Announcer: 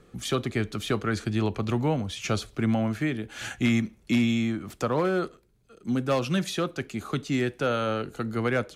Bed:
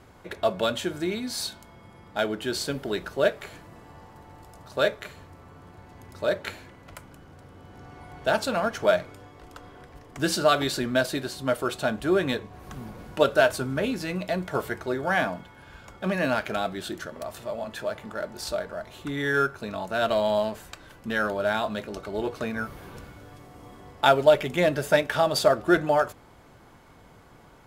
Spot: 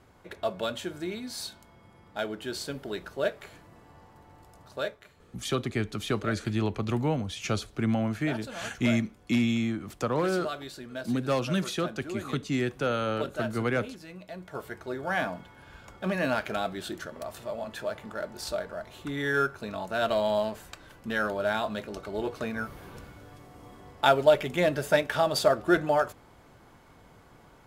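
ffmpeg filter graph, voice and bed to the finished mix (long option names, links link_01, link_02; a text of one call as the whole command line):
ffmpeg -i stem1.wav -i stem2.wav -filter_complex "[0:a]adelay=5200,volume=-2dB[link_01];[1:a]volume=6dB,afade=type=out:start_time=4.7:duration=0.29:silence=0.375837,afade=type=in:start_time=14.3:duration=1.21:silence=0.251189[link_02];[link_01][link_02]amix=inputs=2:normalize=0" out.wav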